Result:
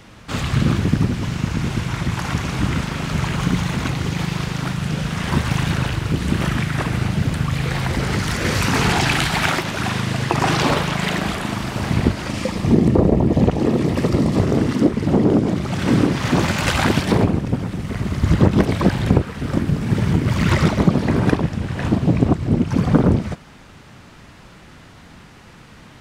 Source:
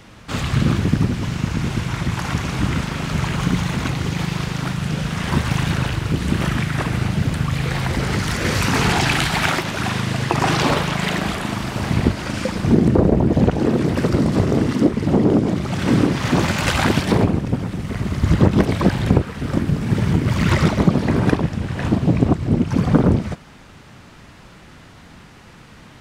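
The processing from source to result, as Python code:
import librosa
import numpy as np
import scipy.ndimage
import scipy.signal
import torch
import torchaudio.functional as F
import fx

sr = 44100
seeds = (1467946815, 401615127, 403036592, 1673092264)

y = fx.notch(x, sr, hz=1500.0, q=6.4, at=(12.27, 14.4))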